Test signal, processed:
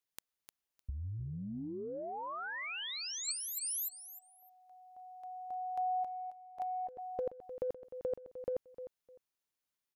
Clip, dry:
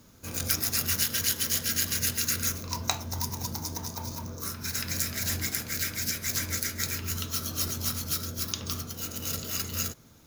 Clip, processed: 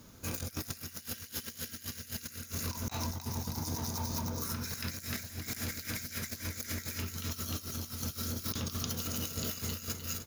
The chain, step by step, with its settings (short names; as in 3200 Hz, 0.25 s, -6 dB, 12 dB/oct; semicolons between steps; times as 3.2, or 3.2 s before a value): notch 7900 Hz, Q 14; on a send: feedback echo 0.304 s, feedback 21%, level -8.5 dB; on the sum: negative-ratio compressor -35 dBFS, ratio -0.5; gain -3 dB